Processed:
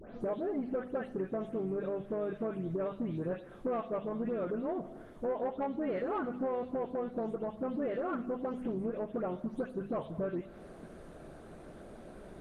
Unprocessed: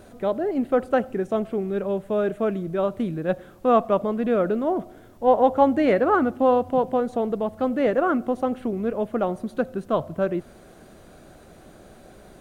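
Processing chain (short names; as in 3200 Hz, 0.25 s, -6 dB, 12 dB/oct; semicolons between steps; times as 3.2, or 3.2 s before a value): spectral delay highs late, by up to 0.211 s; high shelf 3600 Hz -10.5 dB; notches 50/100/150/200/250 Hz; compressor 5:1, threshold -32 dBFS, peak gain reduction 17.5 dB; harmoniser -5 st -13 dB; soft clip -25.5 dBFS, distortion -20 dB; on a send: thinning echo 0.206 s, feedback 19%, high-pass 740 Hz, level -18.5 dB; on the sum: Schroeder reverb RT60 0.66 s, combs from 28 ms, DRR 14.5 dB; Opus 32 kbps 48000 Hz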